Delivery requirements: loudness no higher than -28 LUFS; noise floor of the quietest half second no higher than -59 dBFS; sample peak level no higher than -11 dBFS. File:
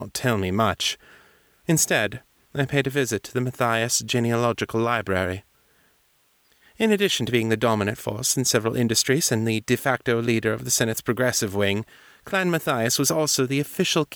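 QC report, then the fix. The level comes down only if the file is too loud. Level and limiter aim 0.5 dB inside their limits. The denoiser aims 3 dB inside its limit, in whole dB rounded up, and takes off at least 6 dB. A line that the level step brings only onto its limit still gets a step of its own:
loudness -22.5 LUFS: fail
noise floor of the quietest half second -64 dBFS: pass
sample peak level -6.0 dBFS: fail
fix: trim -6 dB

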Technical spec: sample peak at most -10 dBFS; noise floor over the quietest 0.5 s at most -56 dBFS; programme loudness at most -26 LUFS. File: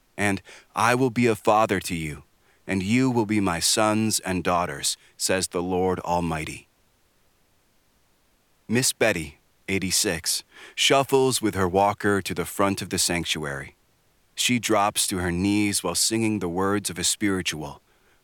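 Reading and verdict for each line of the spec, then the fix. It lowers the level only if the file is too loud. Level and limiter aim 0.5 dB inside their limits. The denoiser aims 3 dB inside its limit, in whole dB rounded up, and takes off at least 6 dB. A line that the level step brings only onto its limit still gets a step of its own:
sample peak -5.5 dBFS: fail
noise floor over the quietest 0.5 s -64 dBFS: pass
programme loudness -23.5 LUFS: fail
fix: trim -3 dB; peak limiter -10.5 dBFS

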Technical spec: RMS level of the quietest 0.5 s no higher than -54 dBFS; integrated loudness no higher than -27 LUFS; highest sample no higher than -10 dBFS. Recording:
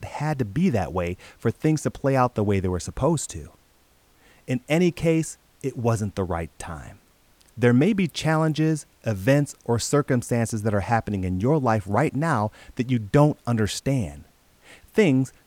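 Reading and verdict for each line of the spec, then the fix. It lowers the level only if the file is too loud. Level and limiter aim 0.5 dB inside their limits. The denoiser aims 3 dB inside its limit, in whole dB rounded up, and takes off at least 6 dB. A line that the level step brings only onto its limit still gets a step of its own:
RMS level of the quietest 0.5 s -59 dBFS: pass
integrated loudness -23.5 LUFS: fail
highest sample -4.5 dBFS: fail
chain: trim -4 dB; peak limiter -10.5 dBFS

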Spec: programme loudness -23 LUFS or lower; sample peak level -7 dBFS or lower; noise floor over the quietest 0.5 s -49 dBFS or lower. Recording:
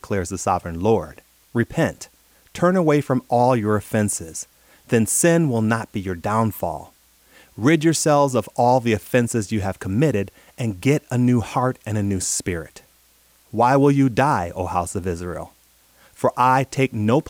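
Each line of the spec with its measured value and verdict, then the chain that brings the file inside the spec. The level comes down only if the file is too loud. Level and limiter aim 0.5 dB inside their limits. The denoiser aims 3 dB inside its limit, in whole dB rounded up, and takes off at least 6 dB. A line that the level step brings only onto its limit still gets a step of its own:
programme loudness -20.5 LUFS: fail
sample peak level -5.5 dBFS: fail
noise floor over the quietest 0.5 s -57 dBFS: pass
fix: trim -3 dB

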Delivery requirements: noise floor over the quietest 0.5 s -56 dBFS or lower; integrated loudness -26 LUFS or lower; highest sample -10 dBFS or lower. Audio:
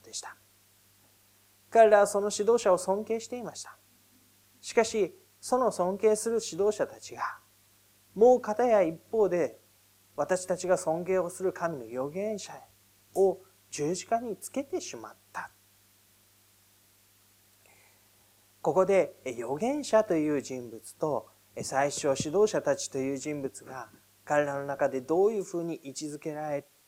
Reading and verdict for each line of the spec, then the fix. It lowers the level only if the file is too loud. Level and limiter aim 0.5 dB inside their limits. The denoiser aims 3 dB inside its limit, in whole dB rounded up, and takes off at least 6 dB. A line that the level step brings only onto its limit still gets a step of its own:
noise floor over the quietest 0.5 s -63 dBFS: pass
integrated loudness -29.0 LUFS: pass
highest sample -7.5 dBFS: fail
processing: peak limiter -10.5 dBFS

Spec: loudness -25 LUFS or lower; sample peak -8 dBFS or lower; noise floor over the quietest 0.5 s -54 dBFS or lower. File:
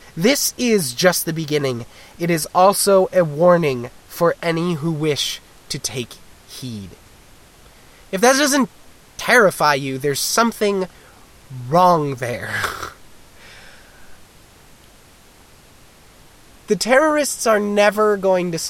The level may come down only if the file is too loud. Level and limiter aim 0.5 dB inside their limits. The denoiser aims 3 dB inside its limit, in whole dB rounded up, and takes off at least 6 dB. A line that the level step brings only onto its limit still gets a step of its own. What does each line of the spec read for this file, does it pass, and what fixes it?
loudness -17.5 LUFS: fail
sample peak -2.5 dBFS: fail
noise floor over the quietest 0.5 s -47 dBFS: fail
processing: trim -8 dB

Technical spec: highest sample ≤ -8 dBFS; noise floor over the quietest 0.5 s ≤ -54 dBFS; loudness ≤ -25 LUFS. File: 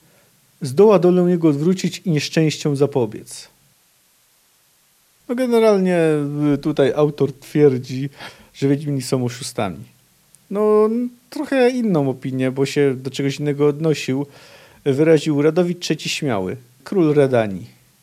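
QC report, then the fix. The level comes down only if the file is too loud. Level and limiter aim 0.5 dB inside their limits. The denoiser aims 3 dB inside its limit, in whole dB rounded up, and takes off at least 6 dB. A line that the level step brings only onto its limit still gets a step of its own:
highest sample -3.0 dBFS: fail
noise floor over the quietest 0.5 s -58 dBFS: pass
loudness -18.5 LUFS: fail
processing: trim -7 dB

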